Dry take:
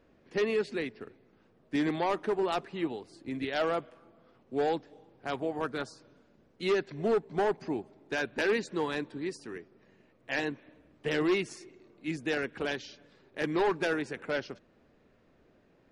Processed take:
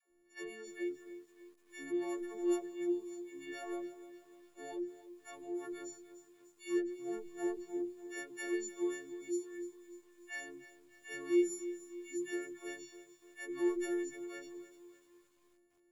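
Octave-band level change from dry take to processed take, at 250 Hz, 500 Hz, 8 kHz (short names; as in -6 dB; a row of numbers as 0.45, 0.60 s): -3.0, -8.5, +3.5 dB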